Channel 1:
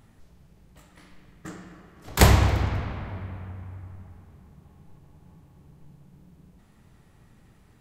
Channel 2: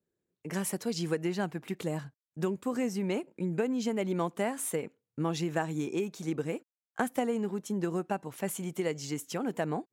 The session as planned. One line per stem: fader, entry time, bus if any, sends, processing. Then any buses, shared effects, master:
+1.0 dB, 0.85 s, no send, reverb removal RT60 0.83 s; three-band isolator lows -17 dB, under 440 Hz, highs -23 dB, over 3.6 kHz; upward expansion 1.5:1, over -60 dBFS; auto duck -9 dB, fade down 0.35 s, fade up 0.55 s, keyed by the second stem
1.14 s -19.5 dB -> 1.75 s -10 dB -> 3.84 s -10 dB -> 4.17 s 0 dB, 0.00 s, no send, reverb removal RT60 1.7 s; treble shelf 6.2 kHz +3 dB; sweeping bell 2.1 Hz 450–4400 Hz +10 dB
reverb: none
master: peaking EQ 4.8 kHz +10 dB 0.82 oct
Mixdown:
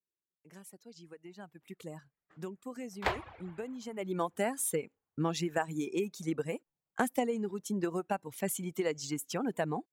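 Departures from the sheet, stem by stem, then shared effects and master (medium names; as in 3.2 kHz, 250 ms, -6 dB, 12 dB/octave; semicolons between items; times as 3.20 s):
stem 2: missing sweeping bell 2.1 Hz 450–4400 Hz +10 dB; master: missing peaking EQ 4.8 kHz +10 dB 0.82 oct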